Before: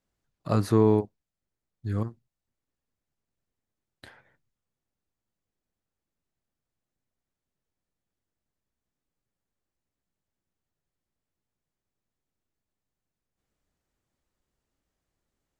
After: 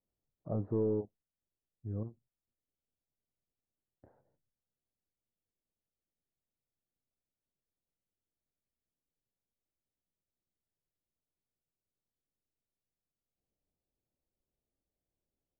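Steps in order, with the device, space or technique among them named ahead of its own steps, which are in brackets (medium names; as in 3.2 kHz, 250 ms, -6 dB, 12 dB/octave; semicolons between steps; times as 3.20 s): overdriven synthesiser ladder filter (saturation -16.5 dBFS, distortion -11 dB; four-pole ladder low-pass 830 Hz, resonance 25%); trim -3 dB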